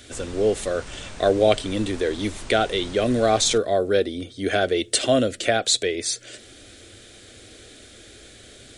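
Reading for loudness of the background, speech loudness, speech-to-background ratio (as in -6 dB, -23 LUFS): -40.5 LUFS, -22.5 LUFS, 18.0 dB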